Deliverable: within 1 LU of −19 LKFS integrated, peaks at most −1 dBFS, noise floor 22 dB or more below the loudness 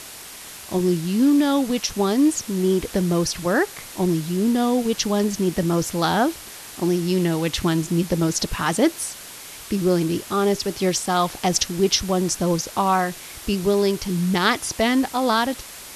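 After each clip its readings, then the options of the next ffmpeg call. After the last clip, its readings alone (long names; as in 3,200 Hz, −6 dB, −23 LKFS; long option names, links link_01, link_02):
background noise floor −39 dBFS; target noise floor −44 dBFS; integrated loudness −21.5 LKFS; sample peak −4.5 dBFS; target loudness −19.0 LKFS
→ -af "afftdn=noise_reduction=6:noise_floor=-39"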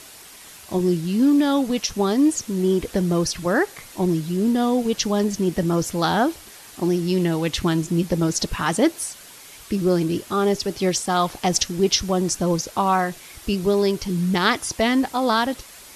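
background noise floor −44 dBFS; integrated loudness −21.5 LKFS; sample peak −4.5 dBFS; target loudness −19.0 LKFS
→ -af "volume=2.5dB"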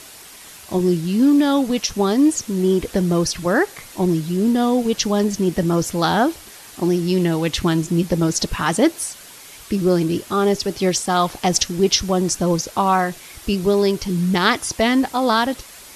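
integrated loudness −19.0 LKFS; sample peak −2.0 dBFS; background noise floor −41 dBFS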